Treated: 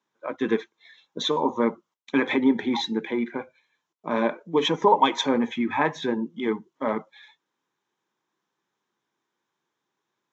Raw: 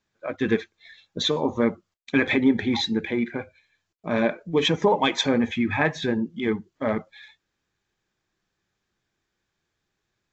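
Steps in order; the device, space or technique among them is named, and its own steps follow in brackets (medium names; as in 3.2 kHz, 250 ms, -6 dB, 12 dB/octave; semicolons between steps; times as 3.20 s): television speaker (cabinet simulation 170–6800 Hz, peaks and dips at 190 Hz -6 dB, 660 Hz -4 dB, 970 Hz +9 dB, 1.7 kHz -4 dB, 2.5 kHz -5 dB, 4.6 kHz -9 dB)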